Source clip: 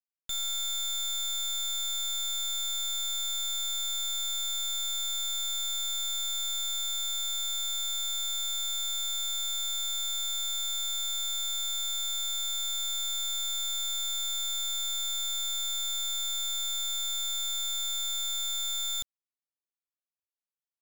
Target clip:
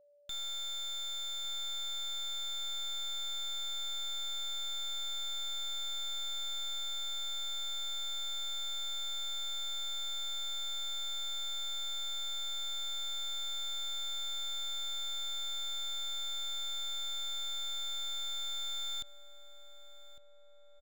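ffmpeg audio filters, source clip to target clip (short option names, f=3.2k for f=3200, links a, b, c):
-filter_complex "[0:a]asplit=2[a][b];[b]adelay=1155,lowpass=f=1.5k:p=1,volume=-13dB,asplit=2[c][d];[d]adelay=1155,lowpass=f=1.5k:p=1,volume=0.55,asplit=2[e][f];[f]adelay=1155,lowpass=f=1.5k:p=1,volume=0.55,asplit=2[g][h];[h]adelay=1155,lowpass=f=1.5k:p=1,volume=0.55,asplit=2[i][j];[j]adelay=1155,lowpass=f=1.5k:p=1,volume=0.55,asplit=2[k][l];[l]adelay=1155,lowpass=f=1.5k:p=1,volume=0.55[m];[a][c][e][g][i][k][m]amix=inputs=7:normalize=0,aeval=exprs='val(0)+0.00141*sin(2*PI*580*n/s)':c=same,acrossover=split=5800[n][o];[o]acompressor=threshold=-49dB:ratio=4:attack=1:release=60[p];[n][p]amix=inputs=2:normalize=0,volume=-5dB"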